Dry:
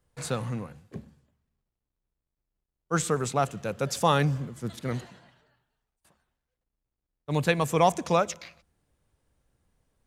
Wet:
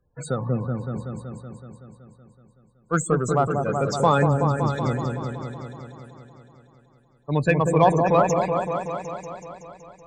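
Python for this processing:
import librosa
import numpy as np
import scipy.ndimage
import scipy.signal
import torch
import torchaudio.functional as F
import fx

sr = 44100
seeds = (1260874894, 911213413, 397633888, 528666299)

y = fx.spec_topn(x, sr, count=32)
y = fx.cheby_harmonics(y, sr, harmonics=(8,), levels_db=(-35,), full_scale_db=-9.0)
y = fx.echo_opening(y, sr, ms=188, hz=750, octaves=1, feedback_pct=70, wet_db=-3)
y = y * 10.0 ** (4.0 / 20.0)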